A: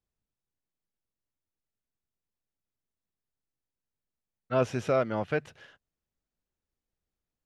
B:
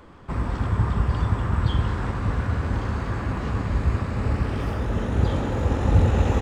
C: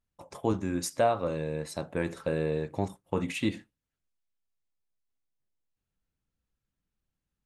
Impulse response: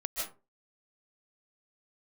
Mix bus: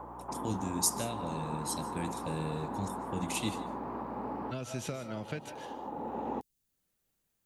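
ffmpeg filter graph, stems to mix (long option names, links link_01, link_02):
-filter_complex "[0:a]bandreject=frequency=5300:width=11,acompressor=threshold=-31dB:ratio=6,volume=2.5dB,asplit=3[link_01][link_02][link_03];[link_02]volume=-10.5dB[link_04];[1:a]highpass=frequency=270:width=0.5412,highpass=frequency=270:width=1.3066,aeval=exprs='val(0)+0.00398*(sin(2*PI*60*n/s)+sin(2*PI*2*60*n/s)/2+sin(2*PI*3*60*n/s)/3+sin(2*PI*4*60*n/s)/4+sin(2*PI*5*60*n/s)/5)':channel_layout=same,lowpass=frequency=890:width_type=q:width=4.9,volume=2dB[link_05];[2:a]volume=0dB,asplit=2[link_06][link_07];[link_07]volume=-16.5dB[link_08];[link_03]apad=whole_len=282746[link_09];[link_05][link_09]sidechaincompress=threshold=-48dB:ratio=8:attack=16:release=696[link_10];[3:a]atrim=start_sample=2205[link_11];[link_04][link_08]amix=inputs=2:normalize=0[link_12];[link_12][link_11]afir=irnorm=-1:irlink=0[link_13];[link_01][link_10][link_06][link_13]amix=inputs=4:normalize=0,highshelf=frequency=6600:gain=10.5,acrossover=split=250|3000[link_14][link_15][link_16];[link_15]acompressor=threshold=-44dB:ratio=3[link_17];[link_14][link_17][link_16]amix=inputs=3:normalize=0,lowshelf=frequency=92:gain=-11.5"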